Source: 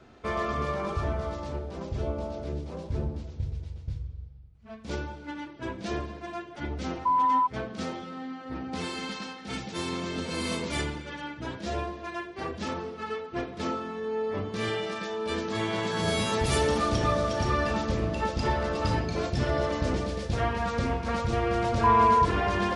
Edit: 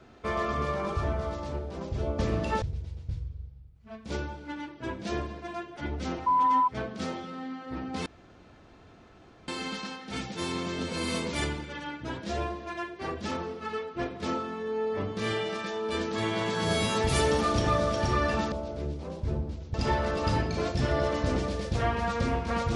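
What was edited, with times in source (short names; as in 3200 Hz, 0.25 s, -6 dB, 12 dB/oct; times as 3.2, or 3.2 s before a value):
2.19–3.41 swap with 17.89–18.32
8.85 insert room tone 1.42 s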